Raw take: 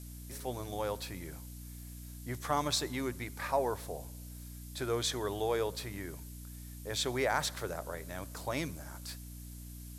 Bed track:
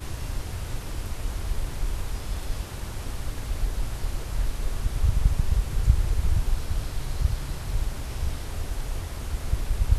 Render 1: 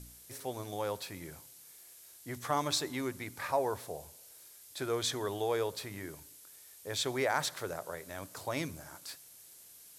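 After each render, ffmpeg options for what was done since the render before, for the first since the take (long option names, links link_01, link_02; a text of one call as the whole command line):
ffmpeg -i in.wav -af "bandreject=frequency=60:width_type=h:width=4,bandreject=frequency=120:width_type=h:width=4,bandreject=frequency=180:width_type=h:width=4,bandreject=frequency=240:width_type=h:width=4,bandreject=frequency=300:width_type=h:width=4" out.wav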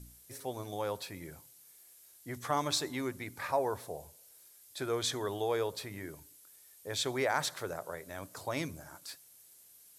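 ffmpeg -i in.wav -af "afftdn=noise_reduction=6:noise_floor=-56" out.wav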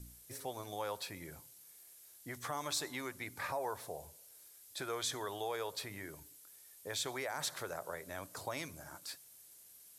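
ffmpeg -i in.wav -filter_complex "[0:a]acrossover=split=590|6800[link_01][link_02][link_03];[link_01]acompressor=threshold=-46dB:ratio=6[link_04];[link_02]alimiter=level_in=7dB:limit=-24dB:level=0:latency=1:release=63,volume=-7dB[link_05];[link_04][link_05][link_03]amix=inputs=3:normalize=0" out.wav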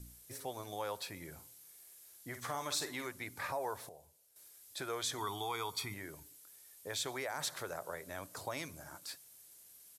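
ffmpeg -i in.wav -filter_complex "[0:a]asplit=3[link_01][link_02][link_03];[link_01]afade=type=out:start_time=1.37:duration=0.02[link_04];[link_02]asplit=2[link_05][link_06];[link_06]adelay=50,volume=-8.5dB[link_07];[link_05][link_07]amix=inputs=2:normalize=0,afade=type=in:start_time=1.37:duration=0.02,afade=type=out:start_time=3.07:duration=0.02[link_08];[link_03]afade=type=in:start_time=3.07:duration=0.02[link_09];[link_04][link_08][link_09]amix=inputs=3:normalize=0,asettb=1/sr,asplit=3[link_10][link_11][link_12];[link_10]atrim=end=5.184[link_13];[link_11]atrim=start=5.18:end=5.94,asetpts=PTS-STARTPTS,afade=type=in:duration=0.004:curve=qsin,afade=type=out:start_time=0.756:duration=0.004:curve=qsin,aecho=1:1:0.9:0.96,atrim=end_sample=33516[link_14];[link_12]atrim=start=5.936[link_15];[link_13][link_14]acrossfade=duration=0.004:curve1=hsin:curve2=qsin[link_16];[link_16][link_15]acrossfade=duration=0.004:curve1=qsin:curve2=hsin,asplit=3[link_17][link_18][link_19];[link_17]atrim=end=3.892[link_20];[link_18]atrim=start=3.888:end=4.362,asetpts=PTS-STARTPTS,volume=-11dB[link_21];[link_19]atrim=start=4.358[link_22];[link_20][link_21]acrossfade=duration=0.004:curve1=hsin:curve2=hsin[link_23];[link_23][link_22]acrossfade=duration=0.004:curve1=hsin:curve2=hsin" out.wav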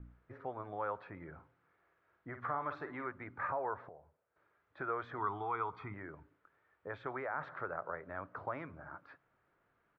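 ffmpeg -i in.wav -af "lowpass=frequency=1800:width=0.5412,lowpass=frequency=1800:width=1.3066,equalizer=frequency=1300:width=2.9:gain=8" out.wav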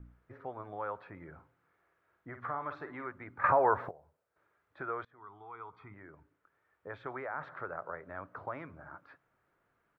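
ffmpeg -i in.wav -filter_complex "[0:a]asplit=4[link_01][link_02][link_03][link_04];[link_01]atrim=end=3.442[link_05];[link_02]atrim=start=3.438:end=3.912,asetpts=PTS-STARTPTS,volume=11.5dB[link_06];[link_03]atrim=start=3.908:end=5.05,asetpts=PTS-STARTPTS,afade=type=out:start_time=1.138:duration=0.004:curve=hsin:silence=0.0668344[link_07];[link_04]atrim=start=5.05,asetpts=PTS-STARTPTS,afade=type=in:duration=1.95:silence=0.0668344[link_08];[link_05][link_06]acrossfade=duration=0.004:curve1=hsin:curve2=hsin[link_09];[link_07][link_08]concat=n=2:v=0:a=1[link_10];[link_09][link_10]acrossfade=duration=0.004:curve1=hsin:curve2=hsin" out.wav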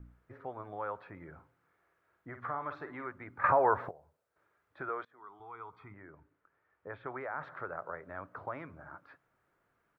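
ffmpeg -i in.wav -filter_complex "[0:a]asettb=1/sr,asplit=3[link_01][link_02][link_03];[link_01]atrim=end=4.894[link_04];[link_02]atrim=start=4.89:end=5.4,asetpts=PTS-STARTPTS,afade=type=in:duration=0.004:curve=qsin,afade=type=out:start_time=0.506:duration=0.004:curve=qsin,highpass=220[link_05];[link_03]atrim=start=5.396[link_06];[link_04][link_05]acrossfade=duration=0.004:curve1=hsin:curve2=qsin[link_07];[link_07][link_06]acrossfade=duration=0.004:curve1=qsin:curve2=hsin,asplit=3[link_08][link_09][link_10];[link_08]afade=type=out:start_time=5.92:duration=0.02[link_11];[link_09]lowpass=2900,afade=type=in:start_time=5.92:duration=0.02,afade=type=out:start_time=7.19:duration=0.02[link_12];[link_10]afade=type=in:start_time=7.19:duration=0.02[link_13];[link_11][link_12][link_13]amix=inputs=3:normalize=0" out.wav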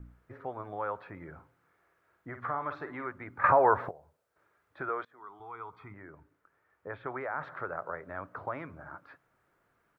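ffmpeg -i in.wav -af "volume=3.5dB" out.wav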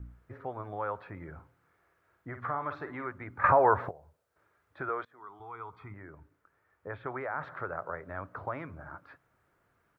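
ffmpeg -i in.wav -af "equalizer=frequency=77:width=0.97:gain=6.5" out.wav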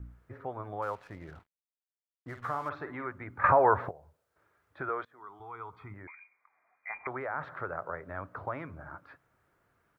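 ffmpeg -i in.wav -filter_complex "[0:a]asettb=1/sr,asplit=3[link_01][link_02][link_03];[link_01]atrim=end=0.824[link_04];[link_02]atrim=start=0.82:end=2.69,asetpts=PTS-STARTPTS,afade=type=in:duration=0.004:curve=qsin,afade=type=out:start_time=1.866:duration=0.004:curve=qsin,aeval=exprs='sgn(val(0))*max(abs(val(0))-0.00178,0)':channel_layout=same[link_05];[link_03]atrim=start=2.686[link_06];[link_04][link_05]acrossfade=duration=0.004:curve1=hsin:curve2=qsin[link_07];[link_07][link_06]acrossfade=duration=0.004:curve1=qsin:curve2=hsin,asettb=1/sr,asplit=3[link_08][link_09][link_10];[link_08]atrim=end=6.074[link_11];[link_09]atrim=start=6.07:end=7.07,asetpts=PTS-STARTPTS,afade=type=in:duration=0.004:curve=qsin,afade=type=out:start_time=0.996:duration=0.004:curve=qsin,lowpass=frequency=2100:width_type=q:width=0.5098,lowpass=frequency=2100:width_type=q:width=0.6013,lowpass=frequency=2100:width_type=q:width=0.9,lowpass=frequency=2100:width_type=q:width=2.563,afreqshift=-2500[link_12];[link_10]atrim=start=7.066[link_13];[link_11][link_12]acrossfade=duration=0.004:curve1=hsin:curve2=qsin[link_14];[link_14][link_13]acrossfade=duration=0.004:curve1=qsin:curve2=hsin" out.wav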